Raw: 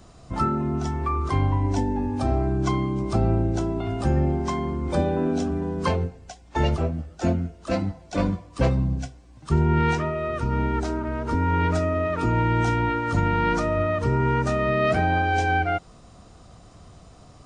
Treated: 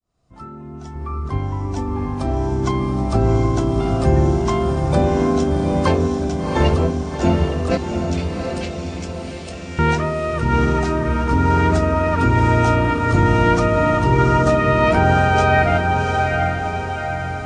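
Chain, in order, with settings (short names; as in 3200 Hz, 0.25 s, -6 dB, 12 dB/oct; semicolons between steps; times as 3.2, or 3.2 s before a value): opening faded in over 3.52 s; 0.95–1.38 tilt -1.5 dB/oct; 7.77–9.79 inverse Chebyshev high-pass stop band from 860 Hz, stop band 50 dB; diffused feedback echo 0.74 s, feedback 55%, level -3 dB; gain +5 dB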